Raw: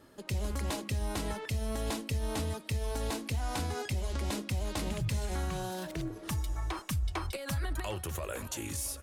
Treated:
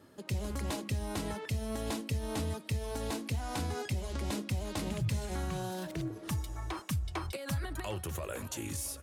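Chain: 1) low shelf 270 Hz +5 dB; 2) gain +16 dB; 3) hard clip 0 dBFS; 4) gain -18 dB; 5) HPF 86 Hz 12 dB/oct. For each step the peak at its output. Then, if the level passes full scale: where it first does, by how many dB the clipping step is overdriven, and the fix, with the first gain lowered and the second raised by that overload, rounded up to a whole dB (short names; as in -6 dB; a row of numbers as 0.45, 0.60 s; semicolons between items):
-20.0, -4.0, -4.0, -22.0, -22.5 dBFS; no overload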